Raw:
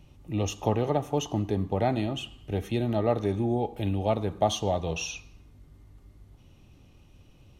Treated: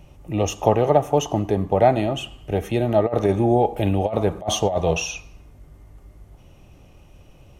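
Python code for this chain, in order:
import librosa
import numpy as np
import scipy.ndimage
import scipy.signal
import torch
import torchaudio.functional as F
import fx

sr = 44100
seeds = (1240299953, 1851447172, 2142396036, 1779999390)

y = fx.graphic_eq_15(x, sr, hz=(100, 250, 630, 4000), db=(-4, -5, 5, -7))
y = fx.over_compress(y, sr, threshold_db=-26.0, ratio=-0.5, at=(3.06, 5.0))
y = F.gain(torch.from_numpy(y), 8.0).numpy()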